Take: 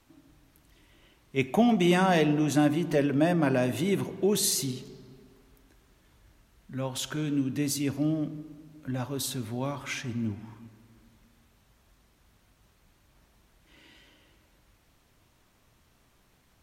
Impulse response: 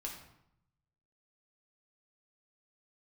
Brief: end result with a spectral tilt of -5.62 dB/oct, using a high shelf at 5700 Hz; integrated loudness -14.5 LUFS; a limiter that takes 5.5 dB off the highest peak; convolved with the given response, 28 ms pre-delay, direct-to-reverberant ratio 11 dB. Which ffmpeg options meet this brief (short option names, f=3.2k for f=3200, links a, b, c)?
-filter_complex "[0:a]highshelf=f=5.7k:g=-7.5,alimiter=limit=-16.5dB:level=0:latency=1,asplit=2[a][b];[1:a]atrim=start_sample=2205,adelay=28[c];[b][c]afir=irnorm=-1:irlink=0,volume=-9.5dB[d];[a][d]amix=inputs=2:normalize=0,volume=14dB"